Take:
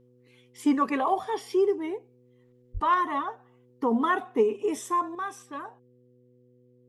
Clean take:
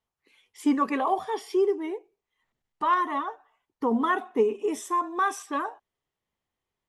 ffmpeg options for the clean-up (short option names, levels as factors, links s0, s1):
-filter_complex "[0:a]bandreject=f=123.9:t=h:w=4,bandreject=f=247.8:t=h:w=4,bandreject=f=371.7:t=h:w=4,bandreject=f=495.6:t=h:w=4,asplit=3[s0][s1][s2];[s0]afade=t=out:st=2.73:d=0.02[s3];[s1]highpass=f=140:w=0.5412,highpass=f=140:w=1.3066,afade=t=in:st=2.73:d=0.02,afade=t=out:st=2.85:d=0.02[s4];[s2]afade=t=in:st=2.85:d=0.02[s5];[s3][s4][s5]amix=inputs=3:normalize=0,asetnsamples=n=441:p=0,asendcmd='5.15 volume volume 8.5dB',volume=1"